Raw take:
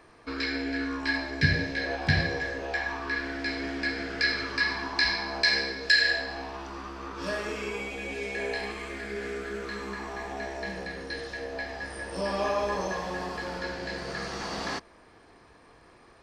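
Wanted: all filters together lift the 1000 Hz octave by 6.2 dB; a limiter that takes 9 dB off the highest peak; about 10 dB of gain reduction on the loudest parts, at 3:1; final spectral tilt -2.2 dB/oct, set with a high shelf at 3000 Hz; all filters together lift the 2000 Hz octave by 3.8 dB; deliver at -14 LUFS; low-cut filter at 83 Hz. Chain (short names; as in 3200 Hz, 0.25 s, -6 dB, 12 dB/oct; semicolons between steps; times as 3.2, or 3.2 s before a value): HPF 83 Hz; bell 1000 Hz +7.5 dB; bell 2000 Hz +4 dB; high shelf 3000 Hz -6.5 dB; compressor 3:1, threshold -29 dBFS; gain +19 dB; limiter -4 dBFS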